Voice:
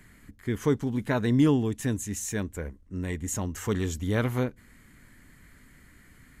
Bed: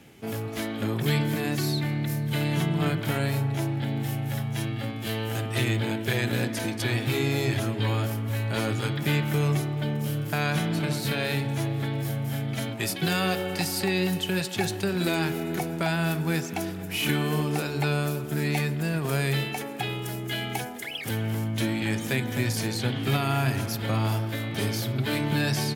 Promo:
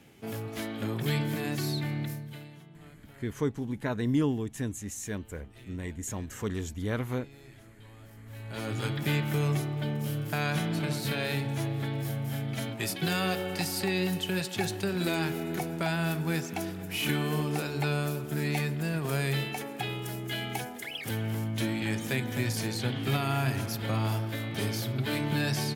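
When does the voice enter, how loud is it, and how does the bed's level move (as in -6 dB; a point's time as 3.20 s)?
2.75 s, -5.0 dB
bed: 2.03 s -4.5 dB
2.62 s -26.5 dB
7.95 s -26.5 dB
8.81 s -3.5 dB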